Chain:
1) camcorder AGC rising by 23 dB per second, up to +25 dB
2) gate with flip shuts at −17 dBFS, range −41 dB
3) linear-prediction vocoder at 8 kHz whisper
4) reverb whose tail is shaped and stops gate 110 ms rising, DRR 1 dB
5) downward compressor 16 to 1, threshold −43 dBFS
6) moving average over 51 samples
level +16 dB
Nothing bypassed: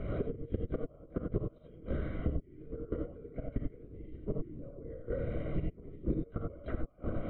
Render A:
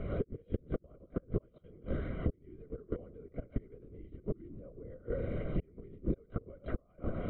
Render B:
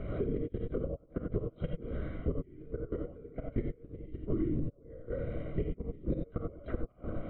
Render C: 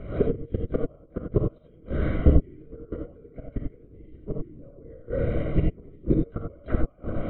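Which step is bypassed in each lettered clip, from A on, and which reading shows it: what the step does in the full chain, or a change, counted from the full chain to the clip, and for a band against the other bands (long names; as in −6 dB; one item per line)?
4, change in momentary loudness spread +3 LU
1, change in crest factor −2.0 dB
5, average gain reduction 5.0 dB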